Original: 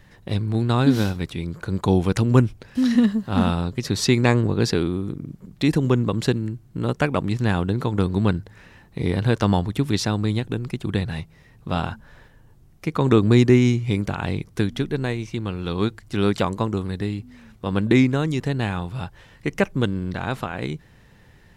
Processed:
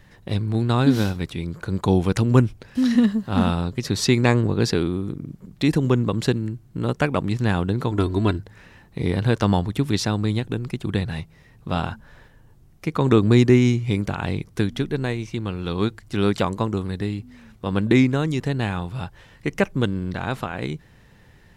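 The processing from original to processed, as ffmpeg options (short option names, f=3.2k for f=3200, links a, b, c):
-filter_complex "[0:a]asettb=1/sr,asplit=3[a][b][c];[a]atrim=end=7.914[d];[b]atrim=start=7.91:end=8.39,asetpts=PTS-STARTPTS,afade=t=in:d=0.004:c=qsin,afade=t=out:st=0.476:d=0.004:c=qsin,aecho=1:1:3:0.65,atrim=end_sample=21168[e];[c]atrim=start=8.386[f];[d][e]acrossfade=d=0.004:c1=hsin:c2=qsin[g];[g][f]acrossfade=d=0.004:c1=qsin:c2=hsin"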